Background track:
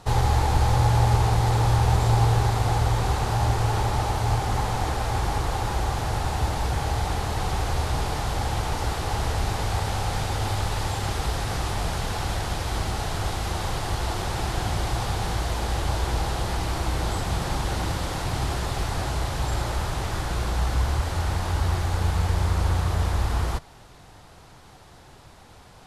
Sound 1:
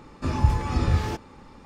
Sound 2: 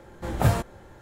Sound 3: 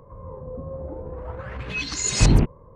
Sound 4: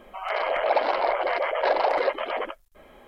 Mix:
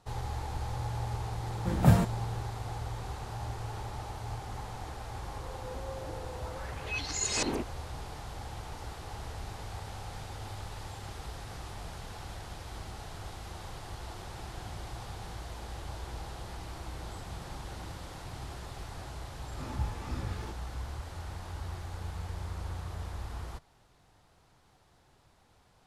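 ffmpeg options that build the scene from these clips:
-filter_complex "[0:a]volume=-15.5dB[a];[2:a]equalizer=f=180:t=o:w=0.76:g=12[b];[3:a]highpass=f=270:w=0.5412,highpass=f=270:w=1.3066[c];[1:a]flanger=delay=15.5:depth=6.2:speed=2.4[d];[b]atrim=end=1.01,asetpts=PTS-STARTPTS,volume=-4.5dB,afade=t=in:d=0.004:c=hsin,afade=t=out:st=1.006:d=0.004:c=hsin,adelay=1430[e];[c]atrim=end=2.75,asetpts=PTS-STARTPTS,volume=-7dB,afade=t=in:d=0.004:c=hsin,afade=t=out:st=2.746:d=0.004:c=hsin,adelay=227997S[f];[d]atrim=end=1.65,asetpts=PTS-STARTPTS,volume=-11.5dB,afade=t=in:d=0.004:c=hsin,afade=t=out:st=1.646:d=0.004:c=hsin,adelay=19350[g];[a][e][f][g]amix=inputs=4:normalize=0"

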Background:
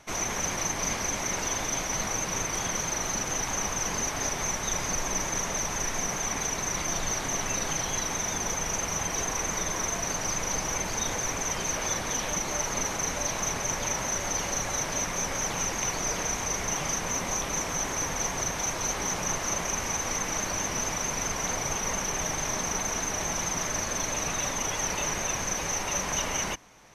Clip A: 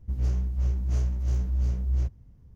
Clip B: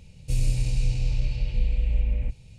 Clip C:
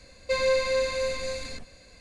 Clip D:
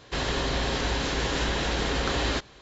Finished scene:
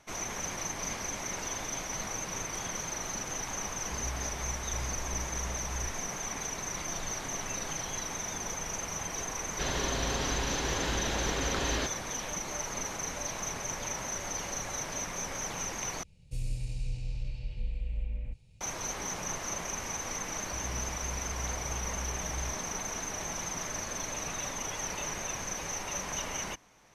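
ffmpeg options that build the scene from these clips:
-filter_complex "[1:a]asplit=2[a][b];[0:a]volume=-6.5dB,asplit=2[c][d];[c]atrim=end=16.034[e];[2:a]atrim=end=2.58,asetpts=PTS-STARTPTS,volume=-11dB[f];[d]atrim=start=18.606[g];[a]atrim=end=2.55,asetpts=PTS-STARTPTS,volume=-14dB,afade=t=in:d=0.004:c=hsin,afade=t=out:st=2.546:d=0.004:c=hsin,adelay=3830[h];[4:a]atrim=end=2.61,asetpts=PTS-STARTPTS,volume=-5.5dB,afade=t=in:d=0.004:c=hsin,afade=t=out:st=2.606:d=0.004:c=hsin,adelay=9470[i];[b]atrim=end=2.55,asetpts=PTS-STARTPTS,volume=-14dB,afade=t=in:d=0.004:c=hsin,afade=t=out:st=2.546:d=0.004:c=hsin,adelay=20450[j];[e][f]acrossfade=d=0.004:c1=hsin:c2=hsin[k];[k][g]acrossfade=d=0.004:c1=hsin:c2=hsin[l];[l][h][i][j]amix=inputs=4:normalize=0"

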